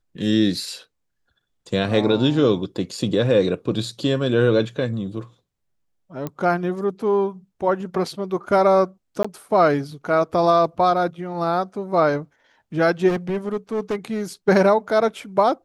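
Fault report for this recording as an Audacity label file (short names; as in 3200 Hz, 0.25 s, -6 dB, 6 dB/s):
6.270000	6.270000	pop -15 dBFS
9.230000	9.240000	gap 15 ms
13.080000	14.220000	clipped -19.5 dBFS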